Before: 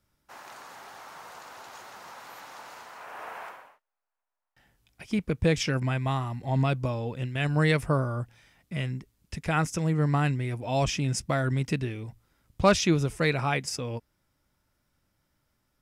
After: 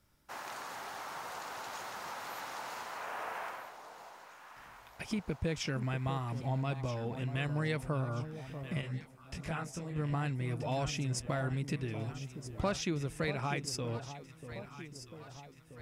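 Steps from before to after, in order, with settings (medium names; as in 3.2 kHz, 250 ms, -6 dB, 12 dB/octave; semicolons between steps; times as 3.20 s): compression 2.5:1, threshold -41 dBFS, peak gain reduction 17 dB; echo whose repeats swap between lows and highs 640 ms, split 980 Hz, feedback 74%, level -10 dB; 8.81–9.96 s: detune thickener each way 49 cents; trim +3 dB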